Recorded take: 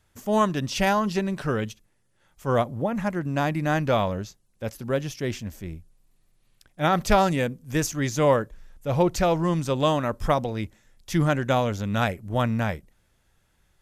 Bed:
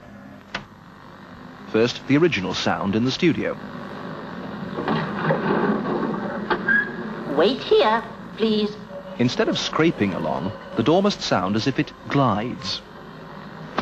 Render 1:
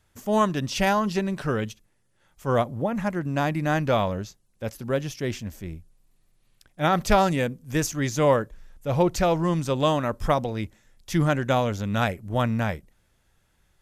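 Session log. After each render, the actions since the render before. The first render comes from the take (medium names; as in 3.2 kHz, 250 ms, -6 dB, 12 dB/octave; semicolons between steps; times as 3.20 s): no audible change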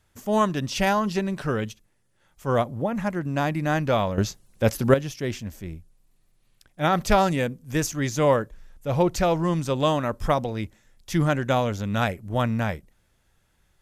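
4.18–4.94 s: gain +10.5 dB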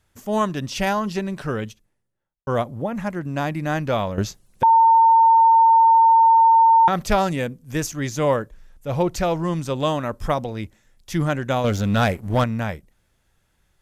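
1.56–2.47 s: studio fade out; 4.63–6.88 s: bleep 907 Hz -10 dBFS; 11.64–12.44 s: waveshaping leveller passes 2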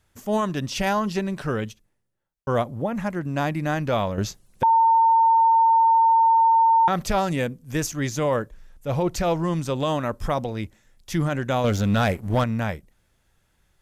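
peak limiter -13.5 dBFS, peak gain reduction 8 dB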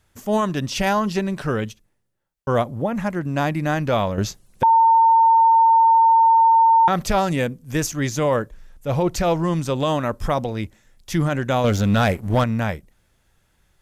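trim +3 dB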